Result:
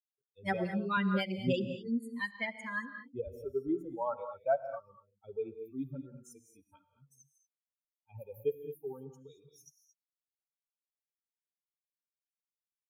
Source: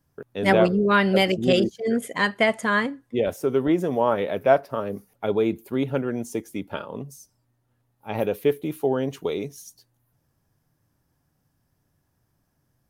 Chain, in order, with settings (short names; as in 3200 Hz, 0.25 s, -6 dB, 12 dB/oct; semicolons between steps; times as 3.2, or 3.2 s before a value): per-bin expansion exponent 3; 0.97–3.45 tone controls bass +9 dB, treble -8 dB; non-linear reverb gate 0.25 s rising, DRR 9 dB; gain -8.5 dB